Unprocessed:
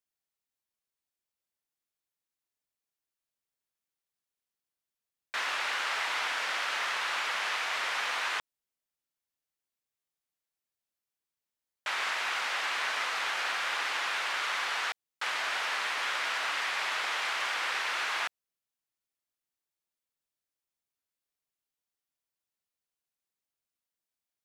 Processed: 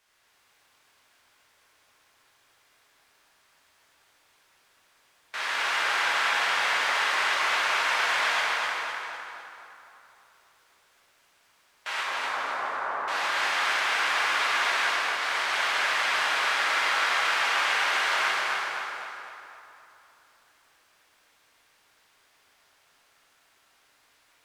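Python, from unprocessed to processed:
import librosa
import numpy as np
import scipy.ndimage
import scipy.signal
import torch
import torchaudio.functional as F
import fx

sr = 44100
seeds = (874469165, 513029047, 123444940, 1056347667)

y = fx.bin_compress(x, sr, power=0.6)
y = fx.lowpass(y, sr, hz=1300.0, slope=24, at=(12.01, 13.08))
y = fx.echo_feedback(y, sr, ms=254, feedback_pct=43, wet_db=-3.5)
y = fx.rev_plate(y, sr, seeds[0], rt60_s=3.1, hf_ratio=0.55, predelay_ms=0, drr_db=-7.5)
y = y * librosa.db_to_amplitude(-6.0)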